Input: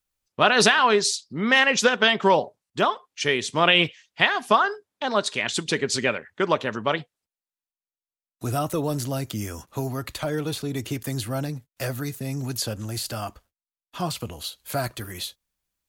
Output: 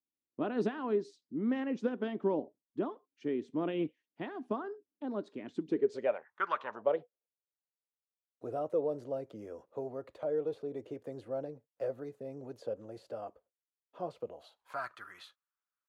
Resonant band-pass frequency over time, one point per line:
resonant band-pass, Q 4.1
0:05.69 290 Hz
0:06.52 1,500 Hz
0:06.90 500 Hz
0:14.25 500 Hz
0:14.85 1,300 Hz

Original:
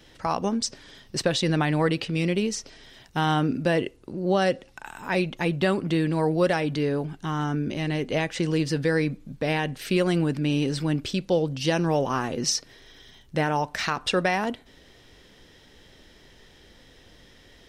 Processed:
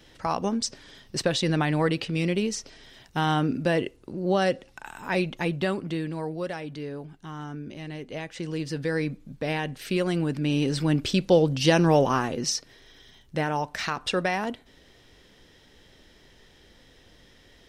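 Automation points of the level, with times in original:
0:05.35 −1 dB
0:06.42 −10 dB
0:08.13 −10 dB
0:09.06 −3 dB
0:10.17 −3 dB
0:11.21 +4 dB
0:12.02 +4 dB
0:12.48 −2.5 dB

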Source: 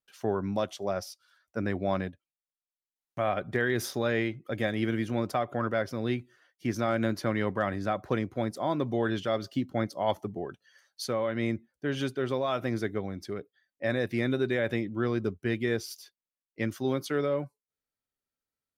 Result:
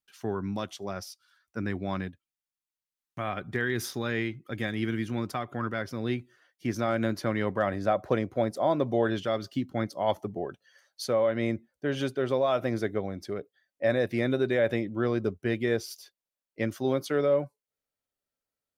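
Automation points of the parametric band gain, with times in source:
parametric band 590 Hz
0:05.73 −8.5 dB
0:06.18 +0.5 dB
0:07.39 +0.5 dB
0:07.88 +7 dB
0:09.05 +7 dB
0:09.52 −5 dB
0:10.44 +6 dB

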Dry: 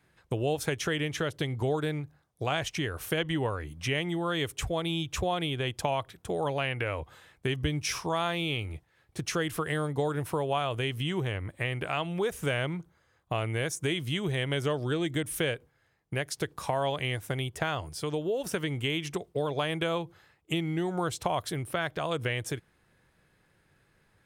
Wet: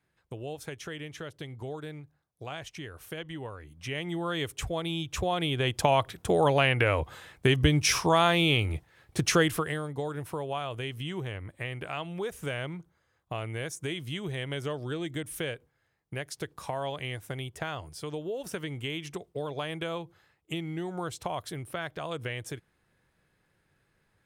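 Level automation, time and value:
0:03.67 −9.5 dB
0:04.15 −1.5 dB
0:05.07 −1.5 dB
0:06.03 +7 dB
0:09.42 +7 dB
0:09.82 −4.5 dB

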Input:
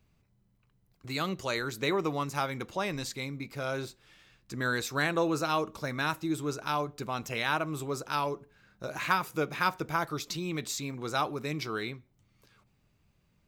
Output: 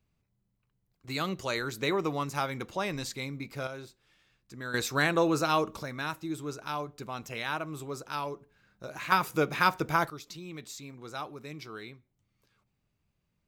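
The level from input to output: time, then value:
−7.5 dB
from 0:01.08 0 dB
from 0:03.67 −8 dB
from 0:04.74 +2.5 dB
from 0:05.83 −4 dB
from 0:09.12 +3.5 dB
from 0:10.10 −8.5 dB

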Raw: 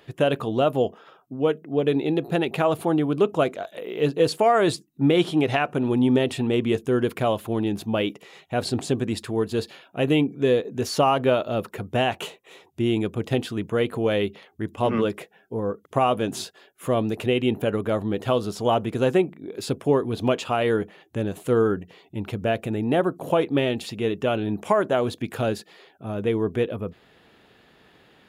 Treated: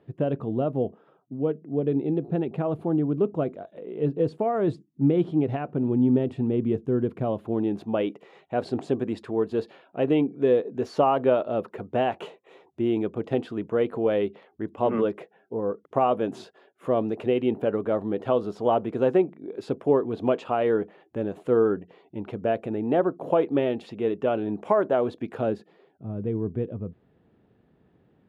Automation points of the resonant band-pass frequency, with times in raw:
resonant band-pass, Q 0.58
0:07.18 170 Hz
0:07.82 490 Hz
0:25.32 490 Hz
0:26.09 120 Hz

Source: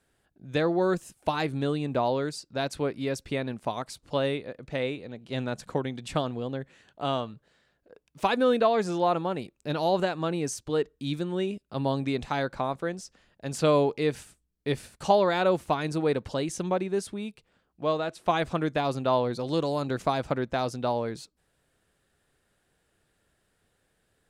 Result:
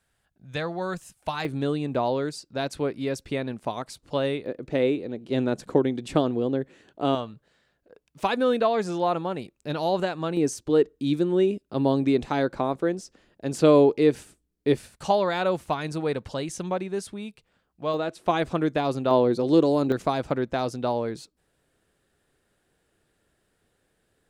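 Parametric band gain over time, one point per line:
parametric band 340 Hz 1.3 octaves
−9.5 dB
from 0:01.45 +2.5 dB
from 0:04.46 +12 dB
from 0:07.15 +0.5 dB
from 0:10.37 +9.5 dB
from 0:14.77 −2 dB
from 0:17.94 +5 dB
from 0:19.11 +11.5 dB
from 0:19.92 +4 dB

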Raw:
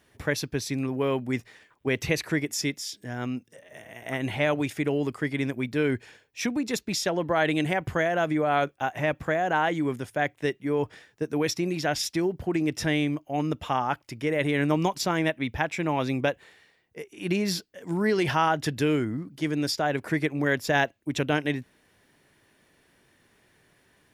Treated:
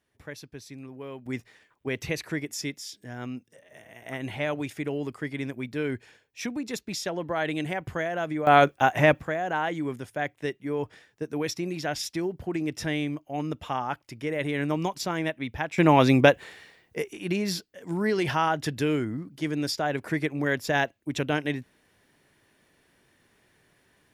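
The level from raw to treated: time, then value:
−13.5 dB
from 0:01.26 −4.5 dB
from 0:08.47 +7 dB
from 0:09.20 −3.5 dB
from 0:15.78 +8.5 dB
from 0:17.17 −1.5 dB

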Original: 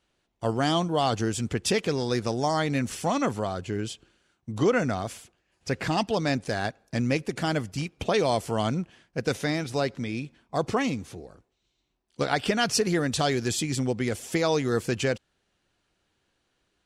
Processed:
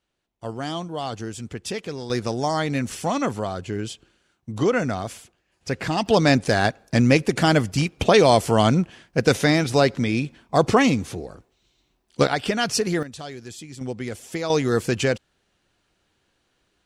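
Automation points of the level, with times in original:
−5 dB
from 0:02.10 +2 dB
from 0:06.06 +9 dB
from 0:12.27 +1.5 dB
from 0:13.03 −11 dB
from 0:13.81 −3 dB
from 0:14.50 +4.5 dB

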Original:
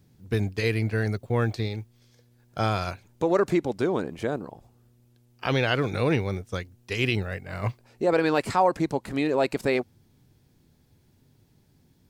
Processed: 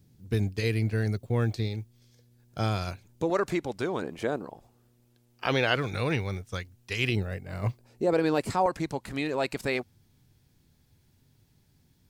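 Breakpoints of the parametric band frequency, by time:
parametric band −6.5 dB 2.9 octaves
1,100 Hz
from 0:03.30 270 Hz
from 0:04.02 75 Hz
from 0:05.76 360 Hz
from 0:07.09 1,700 Hz
from 0:08.66 390 Hz

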